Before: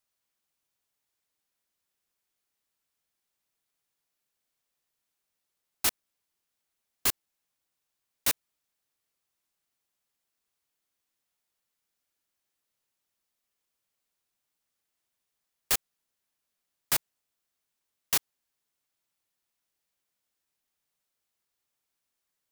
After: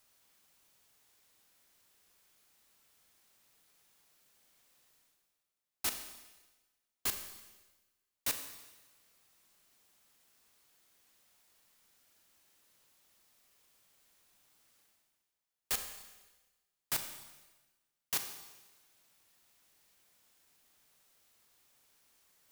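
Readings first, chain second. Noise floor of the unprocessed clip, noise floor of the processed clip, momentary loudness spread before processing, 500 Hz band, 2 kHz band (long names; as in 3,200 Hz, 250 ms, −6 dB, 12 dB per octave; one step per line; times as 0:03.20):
−84 dBFS, below −85 dBFS, 1 LU, −7.0 dB, −7.0 dB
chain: reversed playback
upward compression, threshold −44 dBFS
reversed playback
four-comb reverb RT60 1.2 s, combs from 29 ms, DRR 6.5 dB
level −8 dB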